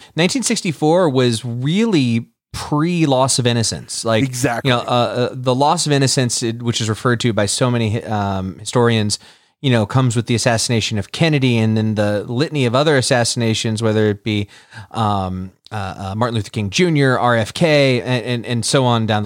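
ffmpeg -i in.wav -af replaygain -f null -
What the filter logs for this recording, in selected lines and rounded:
track_gain = -2.3 dB
track_peak = 0.536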